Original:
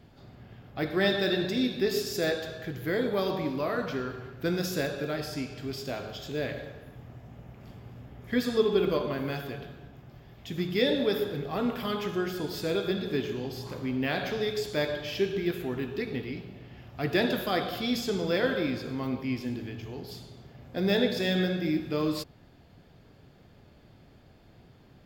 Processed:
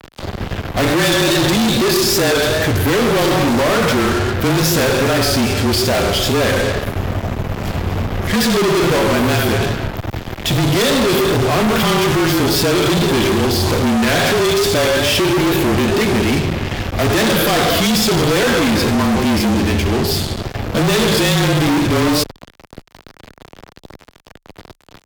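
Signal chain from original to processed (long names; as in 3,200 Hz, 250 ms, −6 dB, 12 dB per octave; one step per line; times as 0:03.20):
fuzz pedal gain 47 dB, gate −49 dBFS
frequency shifter −28 Hz
pitch vibrato 2.4 Hz 56 cents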